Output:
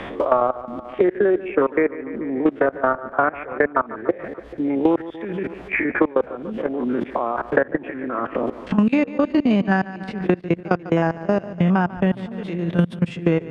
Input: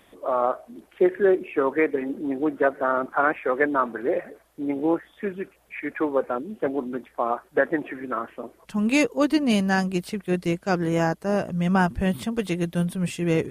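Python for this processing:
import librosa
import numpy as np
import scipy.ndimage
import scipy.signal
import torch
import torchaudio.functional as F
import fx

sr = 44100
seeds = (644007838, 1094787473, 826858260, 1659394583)

y = fx.spec_steps(x, sr, hold_ms=50)
y = scipy.signal.sosfilt(scipy.signal.butter(2, 2800.0, 'lowpass', fs=sr, output='sos'), y)
y = fx.level_steps(y, sr, step_db=23)
y = fx.echo_feedback(y, sr, ms=145, feedback_pct=49, wet_db=-18.0)
y = fx.band_squash(y, sr, depth_pct=100)
y = F.gain(torch.from_numpy(y), 7.0).numpy()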